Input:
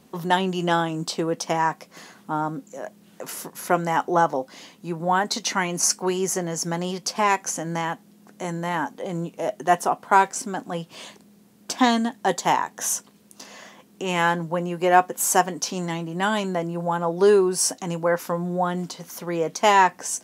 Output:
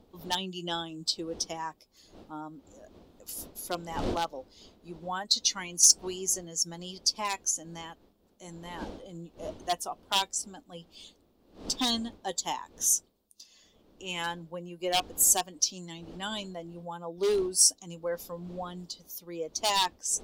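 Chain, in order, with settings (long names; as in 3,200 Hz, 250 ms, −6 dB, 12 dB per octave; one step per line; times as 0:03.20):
spectral dynamics exaggerated over time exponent 1.5
wind on the microphone 390 Hz −39 dBFS
parametric band 130 Hz −15 dB 0.46 octaves
wave folding −12.5 dBFS
high shelf with overshoot 2,700 Hz +11 dB, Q 1.5
level −8.5 dB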